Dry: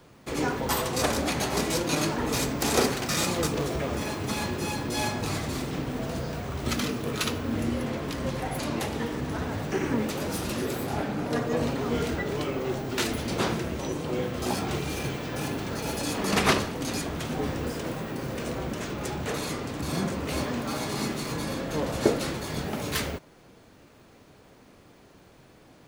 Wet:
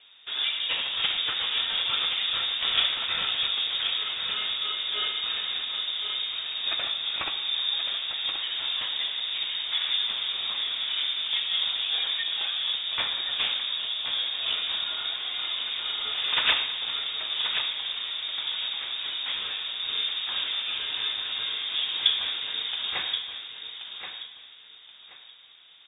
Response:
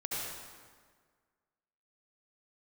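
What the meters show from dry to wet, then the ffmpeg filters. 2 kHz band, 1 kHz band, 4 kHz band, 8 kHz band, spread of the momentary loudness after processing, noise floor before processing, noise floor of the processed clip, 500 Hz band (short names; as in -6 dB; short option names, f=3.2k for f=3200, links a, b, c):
+1.5 dB, -7.5 dB, +12.5 dB, under -40 dB, 5 LU, -54 dBFS, -50 dBFS, -19.5 dB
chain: -filter_complex "[0:a]aecho=1:1:1078|2156|3234:0.398|0.0995|0.0249,asplit=2[a][b];[1:a]atrim=start_sample=2205[c];[b][c]afir=irnorm=-1:irlink=0,volume=-13.5dB[d];[a][d]amix=inputs=2:normalize=0,lowpass=f=3.2k:t=q:w=0.5098,lowpass=f=3.2k:t=q:w=0.6013,lowpass=f=3.2k:t=q:w=0.9,lowpass=f=3.2k:t=q:w=2.563,afreqshift=-3800,volume=-2dB"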